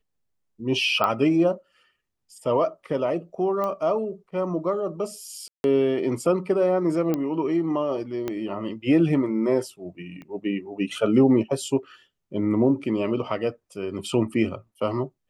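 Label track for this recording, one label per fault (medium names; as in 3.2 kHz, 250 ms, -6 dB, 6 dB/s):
1.040000	1.040000	pop -11 dBFS
3.640000	3.640000	pop -17 dBFS
5.480000	5.640000	dropout 161 ms
7.140000	7.140000	pop -13 dBFS
8.280000	8.280000	pop -15 dBFS
10.220000	10.220000	pop -29 dBFS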